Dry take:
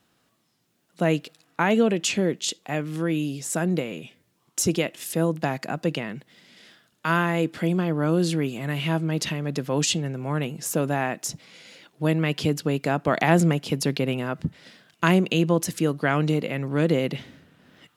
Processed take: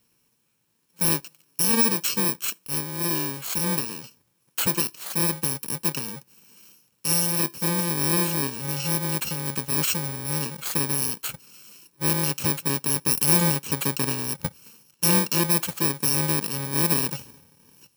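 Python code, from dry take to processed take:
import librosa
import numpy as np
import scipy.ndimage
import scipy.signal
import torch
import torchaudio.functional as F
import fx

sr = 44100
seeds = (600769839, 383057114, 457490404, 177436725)

y = fx.bit_reversed(x, sr, seeds[0], block=64)
y = fx.peak_eq(y, sr, hz=190.0, db=-2.5, octaves=2.8)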